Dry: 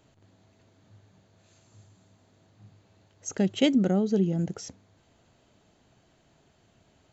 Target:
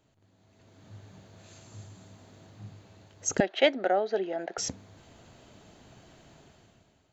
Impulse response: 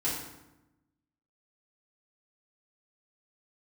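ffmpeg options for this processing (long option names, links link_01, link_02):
-filter_complex "[0:a]asettb=1/sr,asplit=3[link_01][link_02][link_03];[link_01]atrim=end=3.404[link_04];[link_02]atrim=start=3.4:end=4.58,asetpts=PTS-STARTPTS,afade=type=in:duration=0.004:curve=qsin,afade=type=out:start_time=1.176:duration=0.004:curve=qsin,highpass=frequency=460:width=0.5412,highpass=frequency=460:width=1.3066,equalizer=frequency=470:width_type=q:width=4:gain=-6,equalizer=frequency=690:width_type=q:width=4:gain=7,equalizer=frequency=1100:width_type=q:width=4:gain=-4,equalizer=frequency=1700:width_type=q:width=4:gain=7,equalizer=frequency=3000:width_type=q:width=4:gain=-6,lowpass=frequency=3900:width=0.5412,lowpass=frequency=3900:width=1.3066[link_05];[link_03]atrim=start=4.576[link_06];[link_04][link_05]acrossfade=duration=0.004:curve1=hsin:curve2=qsin[link_07];[link_07][link_06]acrossfade=duration=0.004:curve1=qsin:curve2=hsin,dynaudnorm=framelen=160:gausssize=9:maxgain=15.5dB,volume=-6.5dB"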